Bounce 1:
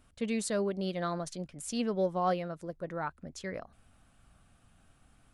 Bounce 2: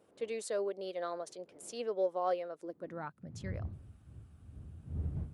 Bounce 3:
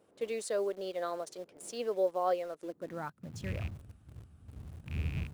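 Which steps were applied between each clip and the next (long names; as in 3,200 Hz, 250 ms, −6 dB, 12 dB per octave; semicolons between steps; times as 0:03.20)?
wind on the microphone 100 Hz −40 dBFS; high-pass filter sweep 460 Hz → 79 Hz, 0:02.49–0:03.57; level −7.5 dB
loose part that buzzes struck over −40 dBFS, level −37 dBFS; in parallel at −10.5 dB: bit-depth reduction 8 bits, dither none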